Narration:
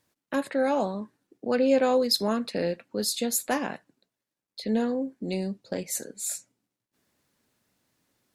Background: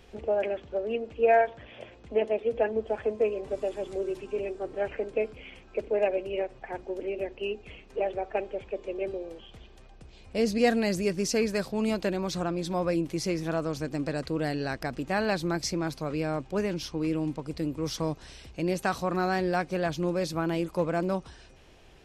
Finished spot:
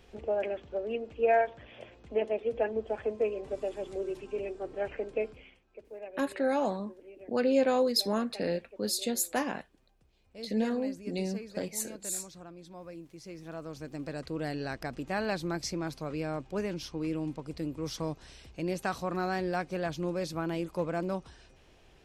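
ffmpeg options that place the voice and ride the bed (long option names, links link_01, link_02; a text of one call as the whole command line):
ffmpeg -i stem1.wav -i stem2.wav -filter_complex "[0:a]adelay=5850,volume=-3.5dB[link_01];[1:a]volume=10dB,afade=type=out:start_time=5.28:duration=0.31:silence=0.188365,afade=type=in:start_time=13.2:duration=1.37:silence=0.211349[link_02];[link_01][link_02]amix=inputs=2:normalize=0" out.wav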